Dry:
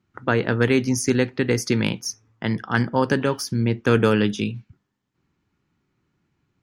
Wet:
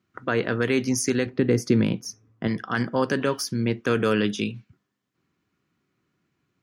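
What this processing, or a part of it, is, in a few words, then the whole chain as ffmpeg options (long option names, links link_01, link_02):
PA system with an anti-feedback notch: -filter_complex "[0:a]highpass=frequency=190:poles=1,asuperstop=centerf=870:order=4:qfactor=7.3,alimiter=limit=-12dB:level=0:latency=1:release=62,asettb=1/sr,asplit=3[link_01][link_02][link_03];[link_01]atrim=end=1.264[link_04];[link_02]atrim=start=1.26:end=2.48,asetpts=PTS-STARTPTS,afade=type=in:duration=0.004:curve=qsin,afade=type=out:start_time=1.216:duration=0.004:curve=qsin,tiltshelf=frequency=650:gain=7[link_05];[link_03]atrim=start=2.476[link_06];[link_04][link_05]acrossfade=duration=0.004:curve1=hsin:curve2=qsin[link_07];[link_07][link_06]acrossfade=duration=0.004:curve1=qsin:curve2=hsin"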